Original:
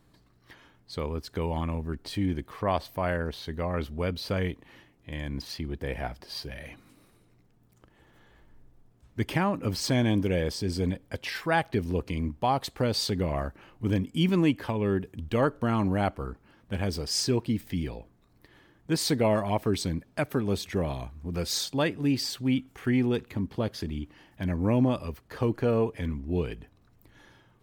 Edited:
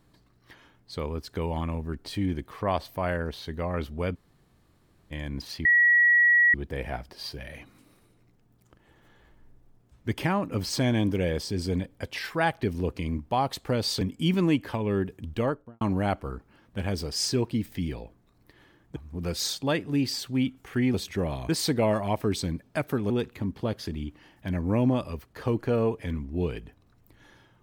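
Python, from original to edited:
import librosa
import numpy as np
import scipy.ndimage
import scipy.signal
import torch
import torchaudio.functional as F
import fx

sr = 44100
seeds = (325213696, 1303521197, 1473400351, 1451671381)

y = fx.studio_fade_out(x, sr, start_s=15.26, length_s=0.5)
y = fx.edit(y, sr, fx.room_tone_fill(start_s=4.15, length_s=0.96, crossfade_s=0.02),
    fx.insert_tone(at_s=5.65, length_s=0.89, hz=1920.0, db=-16.0),
    fx.cut(start_s=13.12, length_s=0.84),
    fx.swap(start_s=18.91, length_s=1.61, other_s=21.07, other_length_s=1.98), tone=tone)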